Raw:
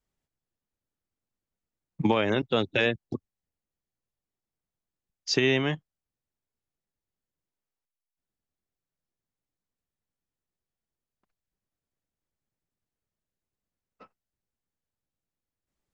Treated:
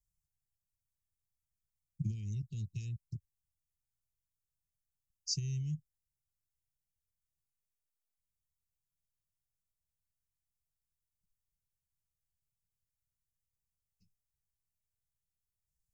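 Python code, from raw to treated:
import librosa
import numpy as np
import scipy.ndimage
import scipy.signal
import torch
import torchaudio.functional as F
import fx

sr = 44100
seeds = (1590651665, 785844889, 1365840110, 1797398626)

y = scipy.signal.sosfilt(scipy.signal.cheby2(4, 70, [560.0, 1600.0], 'bandstop', fs=sr, output='sos'), x)
y = fx.fixed_phaser(y, sr, hz=950.0, stages=6)
y = y * 10.0 ** (1.5 / 20.0)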